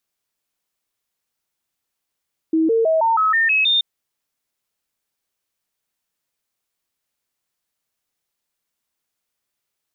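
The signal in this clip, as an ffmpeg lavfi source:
-f lavfi -i "aevalsrc='0.211*clip(min(mod(t,0.16),0.16-mod(t,0.16))/0.005,0,1)*sin(2*PI*321*pow(2,floor(t/0.16)/2)*mod(t,0.16))':d=1.28:s=44100"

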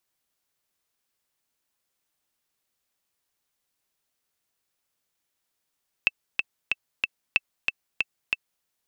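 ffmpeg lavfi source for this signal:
-f lavfi -i "aevalsrc='pow(10,(-6-4*gte(mod(t,4*60/186),60/186))/20)*sin(2*PI*2650*mod(t,60/186))*exp(-6.91*mod(t,60/186)/0.03)':d=2.58:s=44100"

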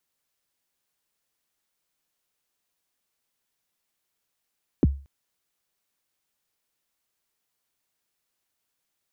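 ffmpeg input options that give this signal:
-f lavfi -i "aevalsrc='0.266*pow(10,-3*t/0.35)*sin(2*PI*(400*0.028/log(69/400)*(exp(log(69/400)*min(t,0.028)/0.028)-1)+69*max(t-0.028,0)))':d=0.23:s=44100"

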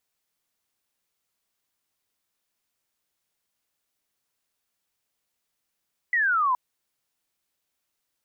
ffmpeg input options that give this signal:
-f lavfi -i "aevalsrc='0.106*clip(t/0.002,0,1)*clip((0.42-t)/0.002,0,1)*sin(2*PI*2000*0.42/log(970/2000)*(exp(log(970/2000)*t/0.42)-1))':d=0.42:s=44100"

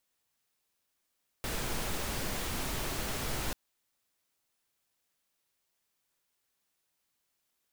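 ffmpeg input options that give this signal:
-f lavfi -i "anoisesrc=c=pink:a=0.0966:d=2.09:r=44100:seed=1"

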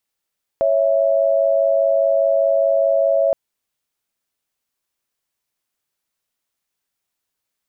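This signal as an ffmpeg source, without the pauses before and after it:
-f lavfi -i "aevalsrc='0.158*(sin(2*PI*554.37*t)+sin(2*PI*659.26*t))':d=2.72:s=44100"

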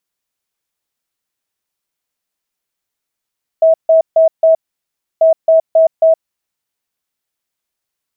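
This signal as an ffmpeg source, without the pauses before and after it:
-f lavfi -i "aevalsrc='0.562*sin(2*PI*647*t)*clip(min(mod(mod(t,1.59),0.27),0.12-mod(mod(t,1.59),0.27))/0.005,0,1)*lt(mod(t,1.59),1.08)':d=3.18:s=44100"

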